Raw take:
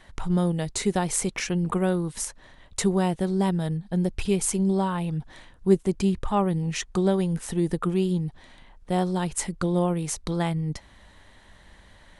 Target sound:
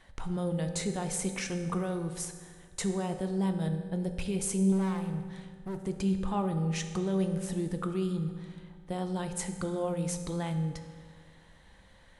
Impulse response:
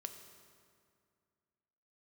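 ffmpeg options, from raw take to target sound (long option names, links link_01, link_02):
-filter_complex "[0:a]alimiter=limit=-16.5dB:level=0:latency=1:release=14,asettb=1/sr,asplit=3[link_01][link_02][link_03];[link_01]atrim=end=4.724[link_04];[link_02]atrim=start=4.72:end=5.78,asetpts=PTS-STARTPTS,afade=type=in:duration=0.004:curve=qsin,afade=type=out:start_time=1.056:duration=0.004:curve=qsin,volume=28dB,asoftclip=hard,volume=-28dB[link_05];[link_03]atrim=start=5.776[link_06];[link_04][link_05]acrossfade=duration=0.004:curve1=hsin:curve2=qsin[link_07];[link_07][link_06]acrossfade=duration=0.004:curve1=qsin:curve2=hsin[link_08];[1:a]atrim=start_sample=2205,asetrate=57330,aresample=44100[link_09];[link_08][link_09]afir=irnorm=-1:irlink=0"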